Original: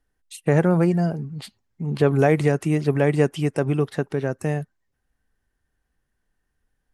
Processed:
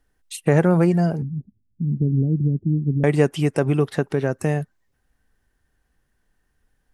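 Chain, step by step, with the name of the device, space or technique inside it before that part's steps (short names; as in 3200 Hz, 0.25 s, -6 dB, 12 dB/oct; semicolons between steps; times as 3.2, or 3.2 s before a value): 1.22–3.04 inverse Chebyshev low-pass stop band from 1200 Hz, stop band 70 dB; parallel compression (in parallel at -0.5 dB: compressor, threshold -28 dBFS, peak gain reduction 15 dB)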